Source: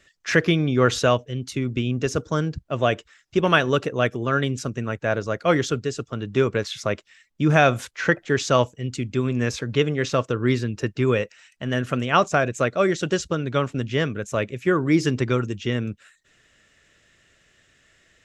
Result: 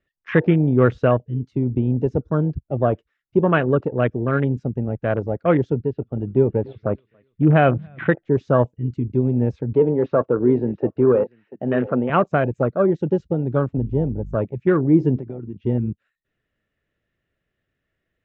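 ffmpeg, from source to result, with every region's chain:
-filter_complex "[0:a]asettb=1/sr,asplit=3[a][b][c];[a]atrim=end=5.734[d];[b]atrim=start=5.73:end=8.13,asetpts=PTS-STARTPTS,afade=t=in:d=0.004:c=qsin,afade=t=out:st=2.396:d=0.004:c=qsin,lowpass=f=3.6k:w=0.5412,lowpass=f=3.6k:w=1.3066,aecho=1:1:284|568|852:0.106|0.0434|0.0178,atrim=end_sample=105840[e];[c]atrim=start=8.126[f];[d][e]acrossfade=d=0.004:c1=hsin:c2=qsin[g];[g][f]acrossfade=d=0.004:c1=qsin:c2=hsin,asettb=1/sr,asplit=3[h][i][j];[h]atrim=end=9.754[k];[i]atrim=start=9.75:end=12.1,asetpts=PTS-STARTPTS,afade=t=in:d=0.004:c=qsin,afade=t=out:st=2.346:d=0.004:c=qsin,asplit=2[l][m];[m]highpass=f=720:p=1,volume=17dB,asoftclip=type=tanh:threshold=-6dB[n];[l][n]amix=inputs=2:normalize=0,lowpass=f=1k:p=1,volume=-6dB,highpass=140,lowpass=4.3k,aecho=1:1:688:0.141,atrim=end_sample=103635[o];[j]atrim=start=12.096[p];[k][o]acrossfade=d=0.004:c1=hsin:c2=qsin[q];[q][p]acrossfade=d=0.004:c1=qsin:c2=hsin,asettb=1/sr,asplit=3[r][s][t];[r]atrim=end=13.774[u];[s]atrim=start=13.77:end=14.35,asetpts=PTS-STARTPTS,afade=t=in:d=0.004:c=qsin,afade=t=out:st=0.576:d=0.004:c=qsin,equalizer=f=2k:t=o:w=2.3:g=-11,aeval=exprs='val(0)+0.0141*(sin(2*PI*50*n/s)+sin(2*PI*2*50*n/s)/2+sin(2*PI*3*50*n/s)/3+sin(2*PI*4*50*n/s)/4+sin(2*PI*5*50*n/s)/5)':c=same[v];[t]atrim=start=14.346[w];[u][v]acrossfade=d=0.004:c1=hsin:c2=qsin[x];[x][w]acrossfade=d=0.004:c1=qsin:c2=hsin,asettb=1/sr,asplit=3[y][z][aa];[y]atrim=end=15.164[ab];[z]atrim=start=15.16:end=15.66,asetpts=PTS-STARTPTS,afade=t=in:d=0.004:c=qsin,afade=t=out:st=0.496:d=0.004:c=qsin,acompressor=threshold=-28dB:ratio=10:attack=3.2:release=140:knee=1:detection=peak,highpass=130,lowpass=4k[ac];[aa]atrim=start=15.656[ad];[ab][ac]acrossfade=d=0.004:c1=hsin:c2=qsin[ae];[ae][ad]acrossfade=d=0.004:c1=qsin:c2=hsin,afwtdn=0.0562,lowpass=3.1k,tiltshelf=f=850:g=5"

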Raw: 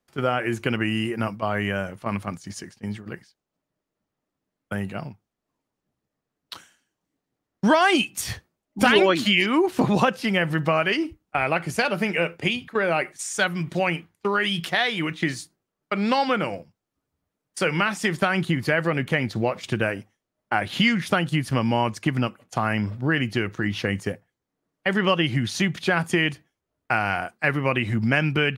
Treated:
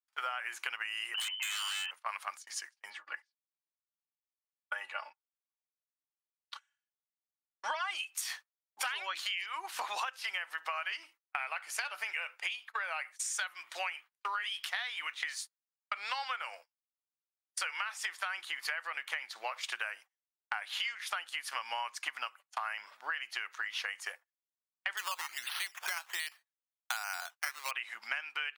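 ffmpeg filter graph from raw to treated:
-filter_complex "[0:a]asettb=1/sr,asplit=3[a][b][c];[a]atrim=end=1.144[d];[b]atrim=start=1.14:end=1.91,asetpts=PTS-STARTPTS,afade=t=in:d=0.004:c=qsin,afade=t=out:st=0.766:d=0.004:c=qsin,lowpass=f=2.7k:t=q:w=0.5098,lowpass=f=2.7k:t=q:w=0.6013,lowpass=f=2.7k:t=q:w=0.9,lowpass=f=2.7k:t=q:w=2.563,afreqshift=-3200,aeval=exprs='0.0596*(abs(mod(val(0)/0.0596+3,4)-2)-1)':c=same[e];[c]atrim=start=1.906[f];[d][e]acrossfade=d=0.004:c1=hsin:c2=qsin[g];[g][f]acrossfade=d=0.004:c1=qsin:c2=hsin,asettb=1/sr,asplit=3[h][i][j];[h]atrim=end=2.904[k];[i]atrim=start=2.9:end=7.91,asetpts=PTS-STARTPTS,afade=t=in:d=0.004:c=qsin,afade=t=out:st=5.006:d=0.004:c=qsin,highpass=320,aemphasis=mode=reproduction:type=bsi,aecho=1:1:3.5:0.75,atrim=end_sample=220941[l];[j]atrim=start=7.906[m];[k][l]acrossfade=d=0.004:c1=hsin:c2=qsin[n];[n][m]acrossfade=d=0.004:c1=qsin:c2=hsin,asettb=1/sr,asplit=3[o][p][q];[o]atrim=end=24.974[r];[p]atrim=start=24.97:end=27.71,asetpts=PTS-STARTPTS,afade=t=in:d=0.004:c=qsin,afade=t=out:st=2.736:d=0.004:c=qsin,highshelf=f=4.5k:g=-7,acrusher=samples=9:mix=1:aa=0.000001:lfo=1:lforange=5.4:lforate=1.3[s];[q]atrim=start=27.706[t];[r][s]acrossfade=d=0.004:c1=hsin:c2=qsin[u];[u][t]acrossfade=d=0.004:c1=qsin:c2=hsin,agate=range=-23dB:threshold=-38dB:ratio=16:detection=peak,highpass=f=940:w=0.5412,highpass=f=940:w=1.3066,acompressor=threshold=-33dB:ratio=12"

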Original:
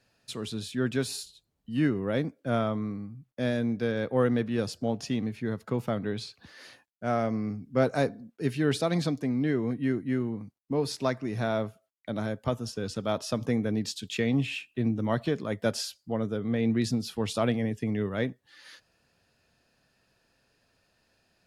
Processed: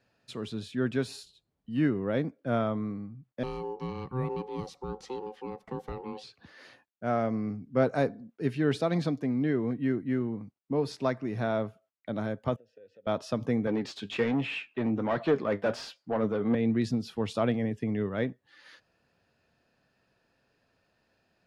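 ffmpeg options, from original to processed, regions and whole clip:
-filter_complex "[0:a]asettb=1/sr,asplit=3[a][b][c];[a]atrim=end=3.434[d];[b]atrim=start=3.43:end=6.24,asetpts=PTS-STARTPTS,afade=t=in:d=0.004:c=qsin,afade=t=out:st=2.806:d=0.004:c=qsin,aeval=exprs='val(0)*sin(2*PI*640*n/s)':c=same,acrossover=split=500|3000[e][f][g];[f]acompressor=threshold=-53dB:ratio=2:attack=3.2:release=140:knee=2.83:detection=peak[h];[e][h][g]amix=inputs=3:normalize=0[i];[c]atrim=start=6.236[j];[d][i]acrossfade=d=0.004:c1=hsin:c2=qsin[k];[k][j]acrossfade=d=0.004:c1=qsin:c2=hsin,asettb=1/sr,asplit=3[l][m][n];[l]atrim=end=12.564[o];[m]atrim=start=12.56:end=13.07,asetpts=PTS-STARTPTS,afade=t=in:d=0.004:c=qsin,afade=t=out:st=0.506:d=0.004:c=qsin,equalizer=f=100:t=o:w=0.67:g=6.5,acompressor=threshold=-36dB:ratio=12:attack=3.2:release=140:knee=1:detection=peak,asplit=3[p][q][r];[p]bandpass=f=530:t=q:w=8,volume=0dB[s];[q]bandpass=f=1.84k:t=q:w=8,volume=-6dB[t];[r]bandpass=f=2.48k:t=q:w=8,volume=-9dB[u];[s][t][u]amix=inputs=3:normalize=0[v];[n]atrim=start=13.066[w];[o][v]acrossfade=d=0.004:c1=hsin:c2=qsin[x];[x][w]acrossfade=d=0.004:c1=qsin:c2=hsin,asettb=1/sr,asplit=3[y][z][aa];[y]atrim=end=13.674[ab];[z]atrim=start=13.67:end=16.55,asetpts=PTS-STARTPTS,afade=t=in:d=0.004:c=qsin,afade=t=out:st=2.876:d=0.004:c=qsin,asplit=2[ac][ad];[ad]highpass=f=720:p=1,volume=22dB,asoftclip=type=tanh:threshold=-12dB[ae];[ac][ae]amix=inputs=2:normalize=0,lowpass=f=1.7k:p=1,volume=-6dB,flanger=delay=5.8:depth=4.2:regen=66:speed=1.3:shape=sinusoidal[af];[aa]atrim=start=16.546[ag];[ab][af]acrossfade=d=0.004:c1=hsin:c2=qsin[ah];[ah][ag]acrossfade=d=0.004:c1=qsin:c2=hsin,lowpass=f=2.3k:p=1,lowshelf=f=65:g=-8"

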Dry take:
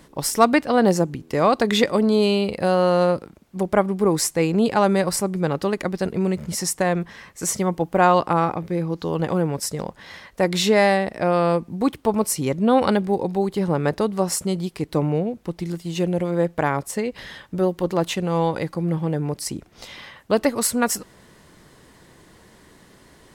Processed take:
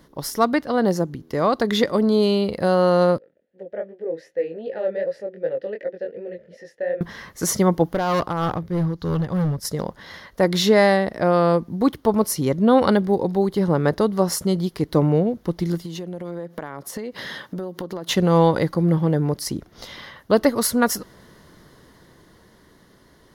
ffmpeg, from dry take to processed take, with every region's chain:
-filter_complex "[0:a]asettb=1/sr,asplit=3[a][b][c];[a]atrim=end=3.184[d];[b]atrim=start=3.18:end=7.01,asetpts=PTS-STARTPTS,afade=t=in:d=0.004:c=qsin,afade=t=out:st=3.826:d=0.004:c=qsin,flanger=delay=18.5:depth=6:speed=2.6,asplit=3[e][f][g];[e]bandpass=f=530:t=q:w=8,volume=0dB[h];[f]bandpass=f=1.84k:t=q:w=8,volume=-6dB[i];[g]bandpass=f=2.48k:t=q:w=8,volume=-9dB[j];[h][i][j]amix=inputs=3:normalize=0,highshelf=f=5.3k:g=-10.5[k];[c]atrim=start=7.006[l];[d][k]acrossfade=d=0.004:c1=hsin:c2=qsin[m];[m][l]acrossfade=d=0.004:c1=qsin:c2=hsin,asettb=1/sr,asplit=3[n][o][p];[n]atrim=end=7.884[q];[o]atrim=start=7.88:end=9.65,asetpts=PTS-STARTPTS,afade=t=in:d=0.004:c=qsin,afade=t=out:st=1.766:d=0.004:c=qsin,asubboost=boost=7.5:cutoff=160,tremolo=f=3.2:d=0.67,asoftclip=type=hard:threshold=-21.5dB[r];[p]atrim=start=9.646[s];[q][r]acrossfade=d=0.004:c1=hsin:c2=qsin[t];[t][s]acrossfade=d=0.004:c1=qsin:c2=hsin,asettb=1/sr,asplit=3[u][v][w];[u]atrim=end=15.844[x];[v]atrim=start=15.84:end=18.09,asetpts=PTS-STARTPTS,afade=t=in:d=0.004:c=qsin,afade=t=out:st=2.246:d=0.004:c=qsin,highpass=150,acompressor=threshold=-32dB:ratio=16:attack=3.2:release=140:knee=1:detection=peak[y];[w]atrim=start=18.086[z];[x][y]acrossfade=d=0.004:c1=hsin:c2=qsin[aa];[aa][z]acrossfade=d=0.004:c1=qsin:c2=hsin,equalizer=f=800:t=o:w=0.33:g=-3,equalizer=f=2.5k:t=o:w=0.33:g=-10,equalizer=f=8k:t=o:w=0.33:g=-12,dynaudnorm=f=160:g=21:m=11.5dB,volume=-2.5dB"

